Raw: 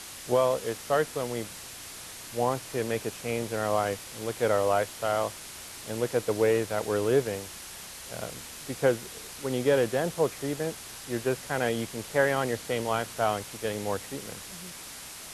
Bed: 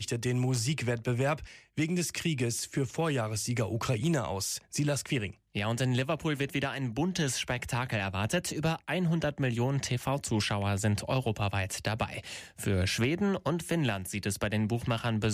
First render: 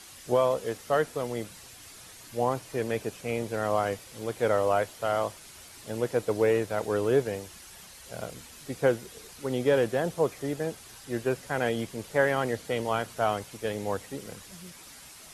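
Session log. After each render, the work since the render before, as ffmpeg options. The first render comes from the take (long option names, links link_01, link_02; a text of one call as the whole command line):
ffmpeg -i in.wav -af "afftdn=noise_reduction=8:noise_floor=-43" out.wav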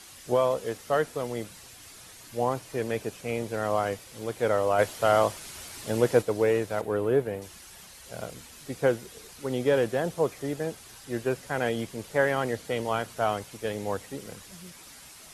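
ffmpeg -i in.wav -filter_complex "[0:a]asplit=3[link_01][link_02][link_03];[link_01]afade=type=out:start_time=4.78:duration=0.02[link_04];[link_02]acontrast=55,afade=type=in:start_time=4.78:duration=0.02,afade=type=out:start_time=6.21:duration=0.02[link_05];[link_03]afade=type=in:start_time=6.21:duration=0.02[link_06];[link_04][link_05][link_06]amix=inputs=3:normalize=0,asettb=1/sr,asplit=3[link_07][link_08][link_09];[link_07]atrim=end=6.814[link_10];[link_08]atrim=start=6.81:end=7.42,asetpts=PTS-STARTPTS,afade=type=in:duration=0.004:curve=qsin,afade=type=out:start_time=0.606:duration=0.004:curve=qsin,equalizer=frequency=5800:width_type=o:width=1.5:gain=-13[link_11];[link_09]atrim=start=7.416[link_12];[link_10][link_11]acrossfade=duration=0.004:curve1=hsin:curve2=qsin[link_13];[link_13][link_12]acrossfade=duration=0.004:curve1=qsin:curve2=hsin" out.wav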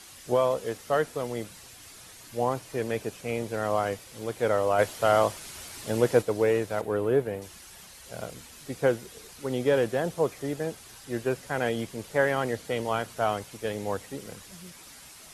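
ffmpeg -i in.wav -af anull out.wav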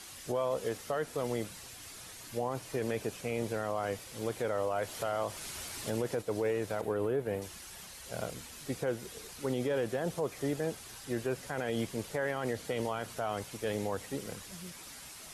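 ffmpeg -i in.wav -af "acompressor=threshold=-25dB:ratio=6,alimiter=limit=-23.5dB:level=0:latency=1:release=28" out.wav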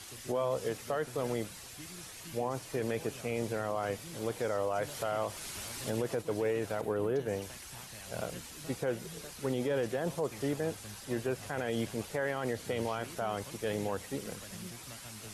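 ffmpeg -i in.wav -i bed.wav -filter_complex "[1:a]volume=-21dB[link_01];[0:a][link_01]amix=inputs=2:normalize=0" out.wav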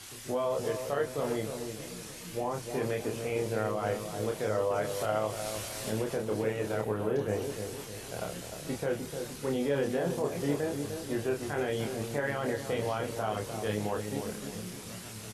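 ffmpeg -i in.wav -filter_complex "[0:a]asplit=2[link_01][link_02];[link_02]adelay=28,volume=-3dB[link_03];[link_01][link_03]amix=inputs=2:normalize=0,asplit=2[link_04][link_05];[link_05]adelay=303,lowpass=frequency=870:poles=1,volume=-5.5dB,asplit=2[link_06][link_07];[link_07]adelay=303,lowpass=frequency=870:poles=1,volume=0.49,asplit=2[link_08][link_09];[link_09]adelay=303,lowpass=frequency=870:poles=1,volume=0.49,asplit=2[link_10][link_11];[link_11]adelay=303,lowpass=frequency=870:poles=1,volume=0.49,asplit=2[link_12][link_13];[link_13]adelay=303,lowpass=frequency=870:poles=1,volume=0.49,asplit=2[link_14][link_15];[link_15]adelay=303,lowpass=frequency=870:poles=1,volume=0.49[link_16];[link_04][link_06][link_08][link_10][link_12][link_14][link_16]amix=inputs=7:normalize=0" out.wav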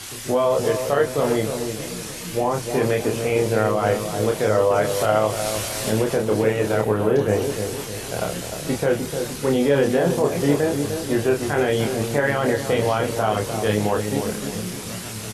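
ffmpeg -i in.wav -af "volume=11.5dB" out.wav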